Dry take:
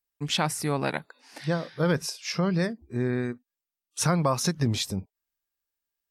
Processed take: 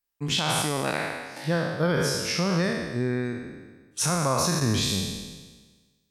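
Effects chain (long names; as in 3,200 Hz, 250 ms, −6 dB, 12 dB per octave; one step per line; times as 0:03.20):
peak hold with a decay on every bin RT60 1.38 s
brickwall limiter −14 dBFS, peak gain reduction 7.5 dB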